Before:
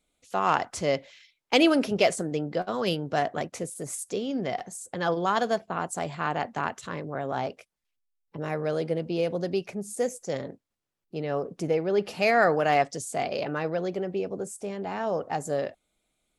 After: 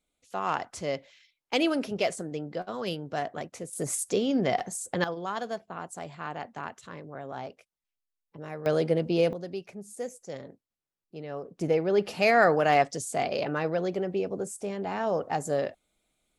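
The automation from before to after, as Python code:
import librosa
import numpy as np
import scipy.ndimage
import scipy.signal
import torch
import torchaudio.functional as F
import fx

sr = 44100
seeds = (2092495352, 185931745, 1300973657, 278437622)

y = fx.gain(x, sr, db=fx.steps((0.0, -5.5), (3.73, 4.0), (5.04, -8.0), (8.66, 3.0), (9.33, -8.0), (11.61, 0.5)))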